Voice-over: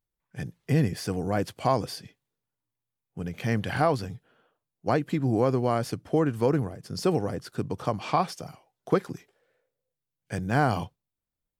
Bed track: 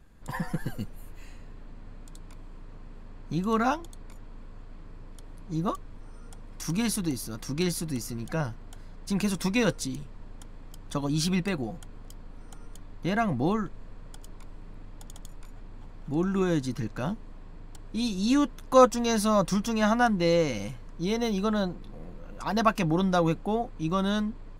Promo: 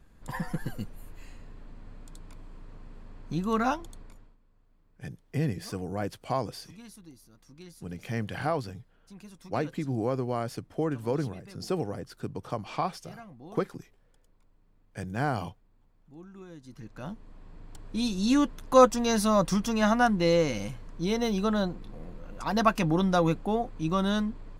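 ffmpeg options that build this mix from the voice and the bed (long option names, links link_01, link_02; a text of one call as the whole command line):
ffmpeg -i stem1.wav -i stem2.wav -filter_complex "[0:a]adelay=4650,volume=-5.5dB[link_01];[1:a]volume=19.5dB,afade=type=out:start_time=3.95:duration=0.42:silence=0.105925,afade=type=in:start_time=16.6:duration=1.36:silence=0.0891251[link_02];[link_01][link_02]amix=inputs=2:normalize=0" out.wav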